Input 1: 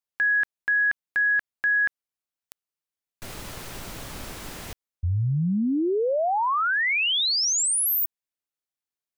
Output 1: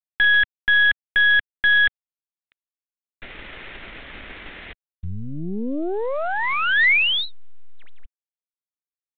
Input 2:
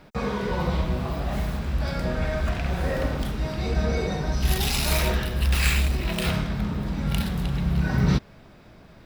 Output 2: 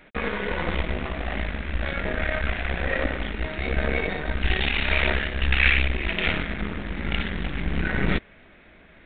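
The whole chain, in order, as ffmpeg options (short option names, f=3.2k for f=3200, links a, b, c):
-af "aeval=exprs='0.531*(cos(1*acos(clip(val(0)/0.531,-1,1)))-cos(1*PI/2))+0.00422*(cos(2*acos(clip(val(0)/0.531,-1,1)))-cos(2*PI/2))+0.0075*(cos(7*acos(clip(val(0)/0.531,-1,1)))-cos(7*PI/2))+0.0668*(cos(8*acos(clip(val(0)/0.531,-1,1)))-cos(8*PI/2))':c=same,equalizer=f=125:t=o:w=1:g=-11,equalizer=f=1k:t=o:w=1:g=-5,equalizer=f=2k:t=o:w=1:g=10" -ar 8000 -c:a adpcm_g726 -b:a 32k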